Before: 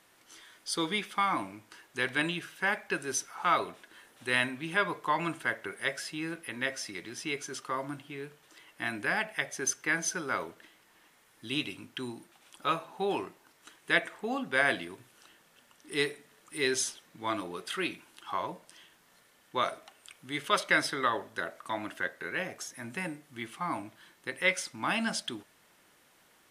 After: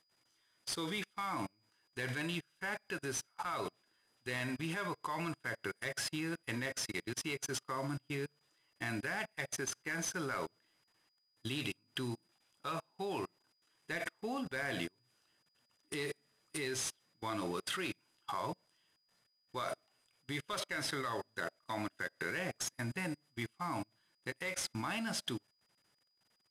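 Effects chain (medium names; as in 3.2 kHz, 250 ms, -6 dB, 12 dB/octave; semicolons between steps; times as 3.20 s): CVSD coder 64 kbps; peaking EQ 120 Hz +8.5 dB 0.71 oct; level held to a coarse grid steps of 21 dB; whistle 4.9 kHz -63 dBFS; upward expansion 2.5:1, over -54 dBFS; trim +6.5 dB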